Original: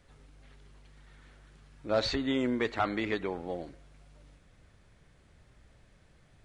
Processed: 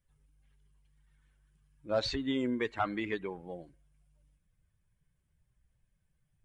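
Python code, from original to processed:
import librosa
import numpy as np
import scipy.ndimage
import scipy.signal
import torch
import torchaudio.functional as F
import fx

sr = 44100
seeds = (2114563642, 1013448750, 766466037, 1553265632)

y = fx.bin_expand(x, sr, power=1.5)
y = F.gain(torch.from_numpy(y), -1.0).numpy()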